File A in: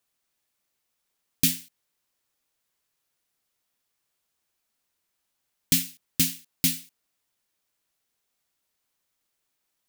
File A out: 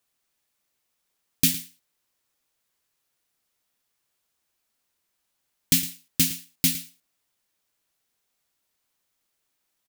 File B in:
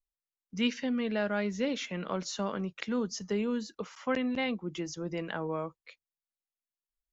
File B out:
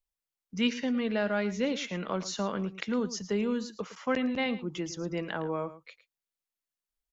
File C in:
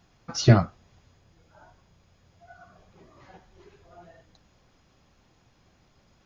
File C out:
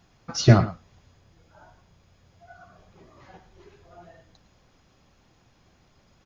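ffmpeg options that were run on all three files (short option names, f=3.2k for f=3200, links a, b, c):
-af "aecho=1:1:110:0.178,volume=1.5dB"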